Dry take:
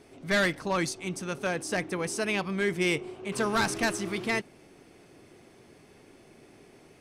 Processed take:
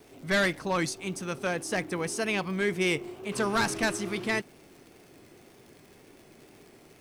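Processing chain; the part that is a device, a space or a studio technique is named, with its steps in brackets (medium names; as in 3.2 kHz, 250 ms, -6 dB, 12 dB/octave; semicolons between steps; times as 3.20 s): vinyl LP (wow and flutter; crackle 100 per s -44 dBFS; white noise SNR 38 dB)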